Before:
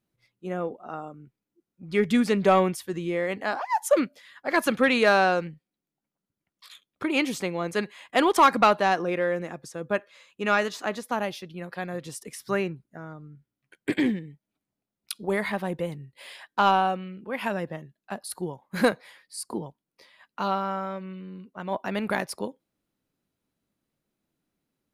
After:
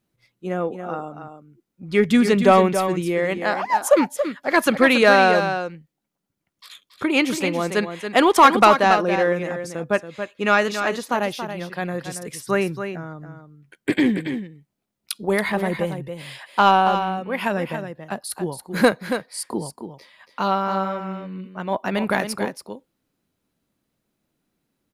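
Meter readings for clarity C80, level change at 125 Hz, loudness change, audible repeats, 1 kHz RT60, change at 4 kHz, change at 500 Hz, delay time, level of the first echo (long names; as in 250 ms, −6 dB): no reverb audible, +6.0 dB, +5.5 dB, 1, no reverb audible, +6.0 dB, +6.0 dB, 279 ms, −8.5 dB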